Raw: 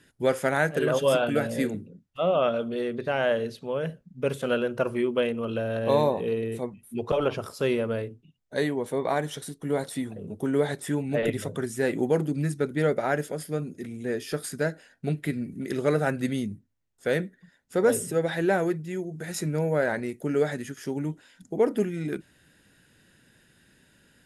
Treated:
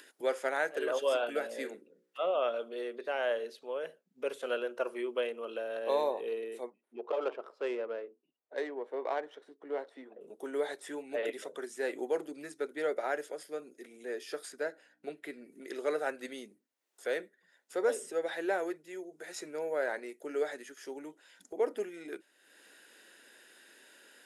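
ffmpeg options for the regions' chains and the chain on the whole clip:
-filter_complex "[0:a]asettb=1/sr,asplit=3[a][b][c];[a]atrim=end=1.654[d];[b]atrim=start=1.65:end=2.26,asetpts=PTS-STARTPTS,afade=t=in:d=0.004:c=qsin,afade=t=out:st=0.606:d=0.004:c=qsin,equalizer=f=1.7k:t=o:w=0.91:g=6,bandreject=f=60:t=h:w=6,bandreject=f=120:t=h:w=6,bandreject=f=180:t=h:w=6,bandreject=f=240:t=h:w=6,bandreject=f=300:t=h:w=6,bandreject=f=360:t=h:w=6,bandreject=f=420:t=h:w=6,bandreject=f=480:t=h:w=6,bandreject=f=540:t=h:w=6[e];[c]atrim=start=2.256[f];[d][e]acrossfade=d=0.004:c1=hsin:c2=qsin[g];[g][f]acrossfade=d=0.004:c1=qsin:c2=hsin,asettb=1/sr,asplit=3[h][i][j];[h]atrim=end=6.704[k];[i]atrim=start=6.7:end=10.21,asetpts=PTS-STARTPTS,afade=t=in:d=0.004:c=qsin,afade=t=out:st=3.506:d=0.004:c=qsin,adynamicsmooth=sensitivity=1.5:basefreq=1.5k,highpass=220[l];[j]atrim=start=10.206[m];[k][l]acrossfade=d=0.004:c1=hsin:c2=qsin[n];[n][m]acrossfade=d=0.004:c1=qsin:c2=hsin,asettb=1/sr,asplit=3[o][p][q];[o]atrim=end=14.524[r];[p]atrim=start=14.52:end=15.46,asetpts=PTS-STARTPTS,afade=t=in:d=0.004:c=qsin,afade=t=out:st=0.936:d=0.004:c=qsin,highpass=62,highshelf=f=3.7k:g=-6,aeval=exprs='val(0)+0.00251*(sin(2*PI*60*n/s)+sin(2*PI*2*60*n/s)/2+sin(2*PI*3*60*n/s)/3+sin(2*PI*4*60*n/s)/4+sin(2*PI*5*60*n/s)/5)':c=same[s];[q]atrim=start=15.456[t];[r][s]acrossfade=d=0.004:c1=hsin:c2=qsin[u];[u][t]acrossfade=d=0.004:c1=qsin:c2=hsin,acrossover=split=8800[v][w];[w]acompressor=threshold=-55dB:ratio=4:attack=1:release=60[x];[v][x]amix=inputs=2:normalize=0,highpass=f=360:w=0.5412,highpass=f=360:w=1.3066,acompressor=mode=upward:threshold=-40dB:ratio=2.5,volume=-7dB"

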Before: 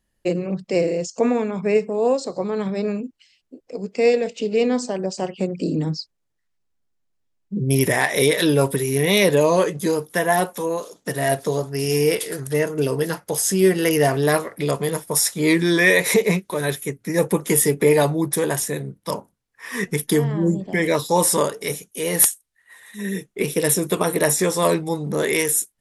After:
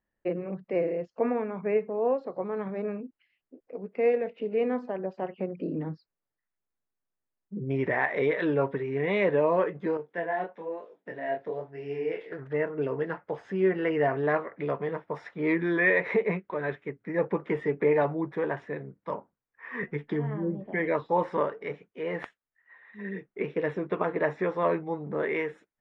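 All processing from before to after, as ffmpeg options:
-filter_complex "[0:a]asettb=1/sr,asplit=3[a][b][c];[a]atrim=end=9.974[d];[b]atrim=start=9.97:end=12.32,asetpts=PTS-STARTPTS,afade=t=in:d=0.004:c=qsin,afade=t=out:st=2.346:d=0.004:c=qsin,highpass=f=220:p=1,equalizer=f=1.2k:t=o:w=0.55:g=-9,flanger=delay=20:depth=6.3:speed=1.1[e];[c]atrim=start=12.316[f];[d][e]acrossfade=d=0.004:c1=hsin:c2=qsin[g];[g][f]acrossfade=d=0.004:c1=qsin:c2=hsin,asettb=1/sr,asplit=3[h][i][j];[h]atrim=end=19.834[k];[i]atrim=start=19.83:end=20.72,asetpts=PTS-STARTPTS,afade=t=in:d=0.004:c=qsin,afade=t=out:st=0.886:d=0.004:c=qsin,acrossover=split=370|3000[l][m][n];[m]acompressor=threshold=-29dB:ratio=2.5:attack=3.2:release=140:knee=2.83:detection=peak[o];[l][o][n]amix=inputs=3:normalize=0,asplit=2[p][q];[q]adelay=14,volume=-7.5dB[r];[p][r]amix=inputs=2:normalize=0,atrim=end_sample=39249[s];[j]atrim=start=20.716[t];[k][s]acrossfade=d=0.004:c1=hsin:c2=qsin[u];[u][t]acrossfade=d=0.004:c1=qsin:c2=hsin,lowpass=f=2.1k:w=0.5412,lowpass=f=2.1k:w=1.3066,lowshelf=f=210:g=-10,volume=-5.5dB"

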